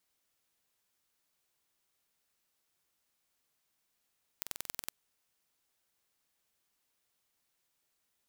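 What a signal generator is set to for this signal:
impulse train 21.5 per second, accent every 2, −9 dBFS 0.51 s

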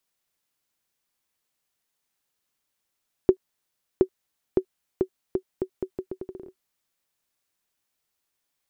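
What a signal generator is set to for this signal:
bouncing ball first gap 0.72 s, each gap 0.78, 375 Hz, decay 78 ms −5 dBFS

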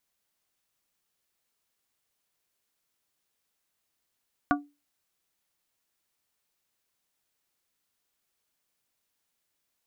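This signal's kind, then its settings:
struck glass plate, lowest mode 289 Hz, modes 4, decay 0.27 s, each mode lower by 0.5 dB, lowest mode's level −20 dB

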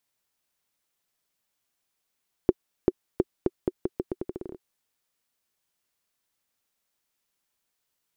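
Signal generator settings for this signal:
bouncing ball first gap 0.39 s, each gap 0.82, 367 Hz, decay 37 ms −5.5 dBFS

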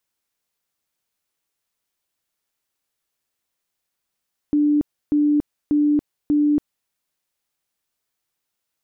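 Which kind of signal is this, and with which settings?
tone bursts 295 Hz, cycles 83, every 0.59 s, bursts 4, −14 dBFS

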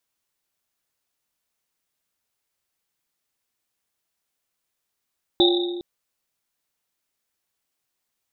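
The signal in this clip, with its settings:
drum after Risset length 0.41 s, pitch 350 Hz, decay 1.67 s, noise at 3,700 Hz, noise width 280 Hz, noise 35%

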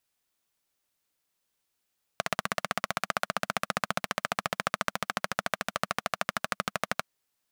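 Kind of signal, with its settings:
pulse-train model of a single-cylinder engine, changing speed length 4.84 s, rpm 1,900, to 1,500, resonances 200/670/1,200 Hz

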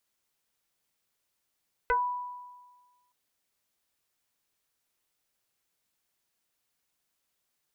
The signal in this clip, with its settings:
two-operator FM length 1.22 s, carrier 986 Hz, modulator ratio 0.52, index 2.1, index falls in 0.16 s exponential, decay 1.42 s, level −21 dB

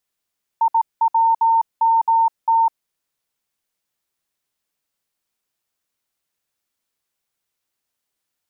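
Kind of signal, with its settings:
Morse code "IWMT" 18 words per minute 909 Hz −12 dBFS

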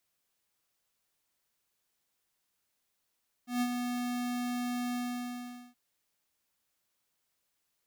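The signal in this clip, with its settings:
note with an ADSR envelope square 245 Hz, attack 144 ms, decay 56 ms, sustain −5.5 dB, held 1.48 s, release 794 ms −28.5 dBFS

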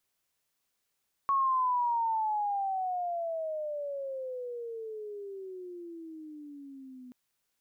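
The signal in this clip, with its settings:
pitch glide with a swell sine, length 5.83 s, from 1,110 Hz, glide −26 semitones, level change −21.5 dB, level −23.5 dB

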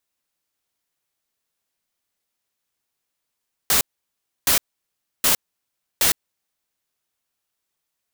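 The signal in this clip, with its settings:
noise bursts white, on 0.11 s, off 0.66 s, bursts 4, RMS −17 dBFS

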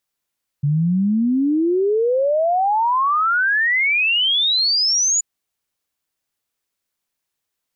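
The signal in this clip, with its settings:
exponential sine sweep 140 Hz → 7,000 Hz 4.58 s −14.5 dBFS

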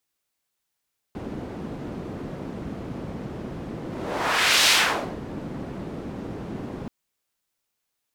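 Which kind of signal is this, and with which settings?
pass-by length 5.73 s, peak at 0:03.53, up 0.89 s, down 0.52 s, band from 240 Hz, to 3,600 Hz, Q 1, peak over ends 16.5 dB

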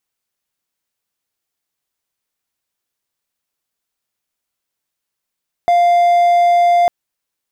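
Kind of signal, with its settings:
tone triangle 698 Hz −6.5 dBFS 1.20 s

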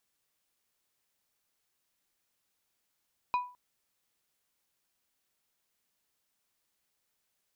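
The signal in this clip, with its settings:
struck glass plate, length 0.21 s, lowest mode 988 Hz, decay 0.37 s, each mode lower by 11 dB, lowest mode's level −23 dB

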